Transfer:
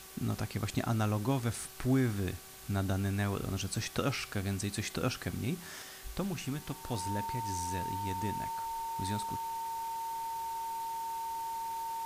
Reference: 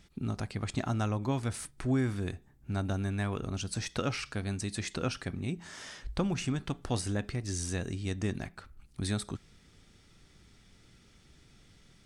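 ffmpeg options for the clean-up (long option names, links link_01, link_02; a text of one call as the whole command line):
ffmpeg -i in.wav -af "bandreject=frequency=381.1:width_type=h:width=4,bandreject=frequency=762.2:width_type=h:width=4,bandreject=frequency=1143.3:width_type=h:width=4,bandreject=frequency=1524.4:width_type=h:width=4,bandreject=frequency=910:width=30,afwtdn=0.0032,asetnsamples=nb_out_samples=441:pad=0,asendcmd='5.82 volume volume 5dB',volume=0dB" out.wav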